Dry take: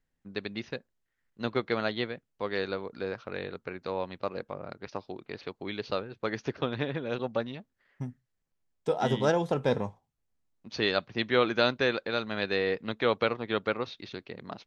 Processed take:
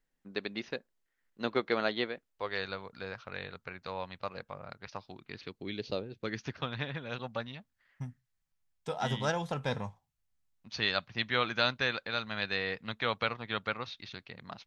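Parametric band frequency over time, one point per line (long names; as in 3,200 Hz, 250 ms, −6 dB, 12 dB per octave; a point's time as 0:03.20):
parametric band −12.5 dB 1.6 octaves
0:02.01 84 Hz
0:02.64 340 Hz
0:04.95 340 Hz
0:06.03 1,500 Hz
0:06.57 370 Hz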